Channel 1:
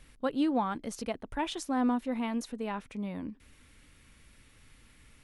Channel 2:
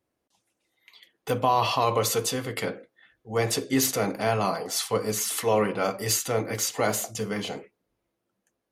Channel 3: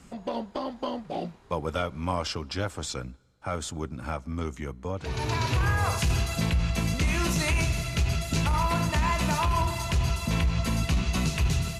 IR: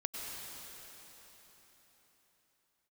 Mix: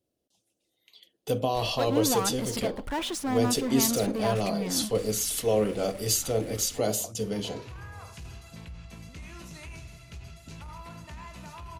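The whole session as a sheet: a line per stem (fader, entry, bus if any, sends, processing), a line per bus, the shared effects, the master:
-3.5 dB, 1.55 s, no send, gate -54 dBFS, range -8 dB; power-law curve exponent 0.5
-0.5 dB, 0.00 s, no send, band shelf 1400 Hz -12.5 dB
-18.0 dB, 2.15 s, no send, dry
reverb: off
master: dry

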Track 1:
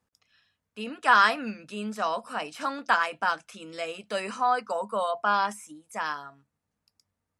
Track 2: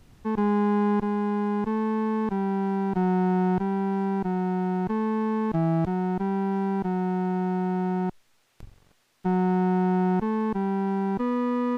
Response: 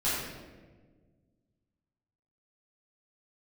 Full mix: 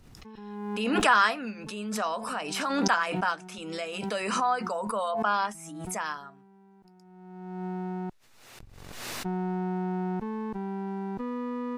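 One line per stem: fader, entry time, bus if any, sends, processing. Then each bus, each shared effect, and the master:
-2.5 dB, 0.00 s, no send, dry
-8.0 dB, 0.00 s, no send, notch 3200 Hz, Q 23; auto duck -23 dB, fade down 0.55 s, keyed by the first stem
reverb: off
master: backwards sustainer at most 35 dB/s

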